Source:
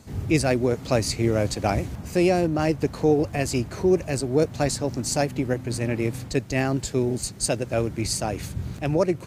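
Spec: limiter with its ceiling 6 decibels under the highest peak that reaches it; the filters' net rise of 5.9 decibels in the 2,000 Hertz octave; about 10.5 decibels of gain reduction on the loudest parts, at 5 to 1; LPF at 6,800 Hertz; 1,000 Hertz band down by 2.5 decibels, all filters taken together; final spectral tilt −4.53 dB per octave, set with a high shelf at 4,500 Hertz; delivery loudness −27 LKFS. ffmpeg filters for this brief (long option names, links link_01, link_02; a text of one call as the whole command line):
ffmpeg -i in.wav -af "lowpass=6800,equalizer=frequency=1000:width_type=o:gain=-6,equalizer=frequency=2000:width_type=o:gain=8,highshelf=frequency=4500:gain=5,acompressor=threshold=-27dB:ratio=5,volume=5.5dB,alimiter=limit=-14.5dB:level=0:latency=1" out.wav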